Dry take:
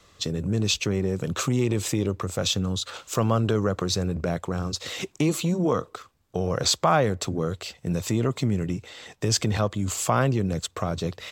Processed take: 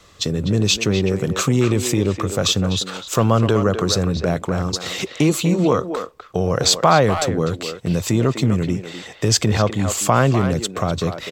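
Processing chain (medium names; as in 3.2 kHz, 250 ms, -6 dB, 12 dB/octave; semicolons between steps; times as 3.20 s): speakerphone echo 250 ms, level -7 dB; trim +6.5 dB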